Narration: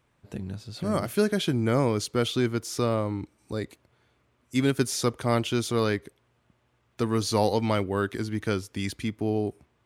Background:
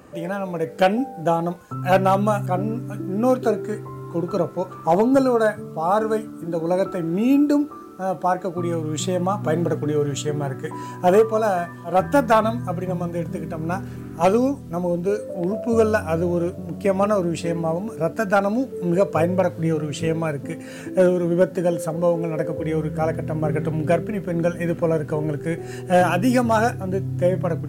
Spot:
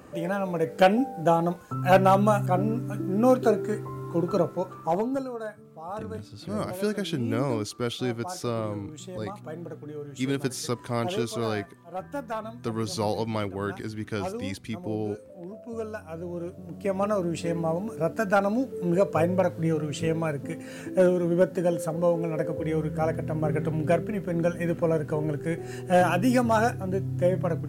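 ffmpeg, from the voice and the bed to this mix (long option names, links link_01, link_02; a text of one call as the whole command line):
ffmpeg -i stem1.wav -i stem2.wav -filter_complex "[0:a]adelay=5650,volume=-4dB[link_01];[1:a]volume=11dB,afade=type=out:start_time=4.32:duration=0.96:silence=0.177828,afade=type=in:start_time=16.08:duration=1.5:silence=0.237137[link_02];[link_01][link_02]amix=inputs=2:normalize=0" out.wav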